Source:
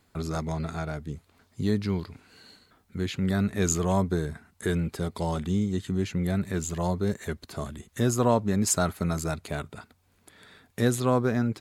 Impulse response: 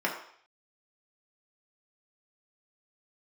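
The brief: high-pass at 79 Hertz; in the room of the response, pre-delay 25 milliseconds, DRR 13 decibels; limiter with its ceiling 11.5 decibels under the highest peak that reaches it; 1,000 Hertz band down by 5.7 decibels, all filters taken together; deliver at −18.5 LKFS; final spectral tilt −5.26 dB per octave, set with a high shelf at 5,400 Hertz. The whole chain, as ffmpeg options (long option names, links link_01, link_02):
-filter_complex "[0:a]highpass=79,equalizer=frequency=1000:width_type=o:gain=-8,highshelf=frequency=5400:gain=8,alimiter=limit=-17.5dB:level=0:latency=1,asplit=2[link_01][link_02];[1:a]atrim=start_sample=2205,adelay=25[link_03];[link_02][link_03]afir=irnorm=-1:irlink=0,volume=-23dB[link_04];[link_01][link_04]amix=inputs=2:normalize=0,volume=11.5dB"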